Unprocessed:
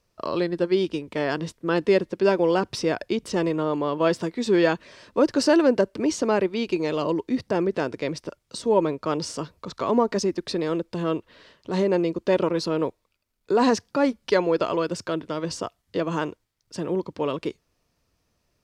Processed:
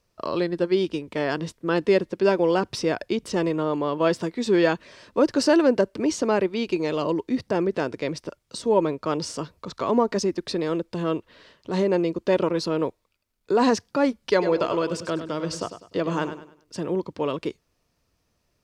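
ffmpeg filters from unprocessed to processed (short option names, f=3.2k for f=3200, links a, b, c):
-filter_complex "[0:a]asettb=1/sr,asplit=3[a][b][c];[a]atrim=end=14.314[d];[b]atrim=start=14.31:end=16.83,asetpts=PTS-STARTPTS,afade=t=in:d=0.004:c=qsin,afade=t=out:st=2.516:d=0.004:c=qsin,aecho=1:1:100|200|300|400:0.299|0.102|0.0345|0.0117,atrim=end_sample=111132[e];[c]atrim=start=16.826[f];[d][e]acrossfade=d=0.004:c1=hsin:c2=qsin[g];[g][f]acrossfade=d=0.004:c1=qsin:c2=hsin"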